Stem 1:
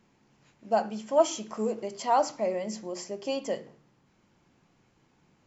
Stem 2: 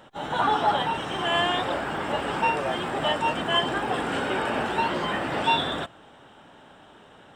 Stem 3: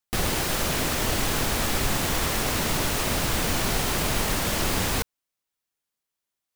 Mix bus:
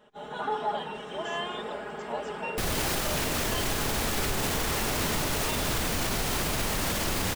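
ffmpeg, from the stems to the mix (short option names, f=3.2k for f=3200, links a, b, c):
-filter_complex "[0:a]volume=-16.5dB[a];[1:a]equalizer=f=460:t=o:w=0.55:g=7.5,aecho=1:1:4.8:0.93,volume=-13dB[b];[2:a]adelay=2450,volume=1.5dB[c];[a][b][c]amix=inputs=3:normalize=0,alimiter=limit=-19dB:level=0:latency=1"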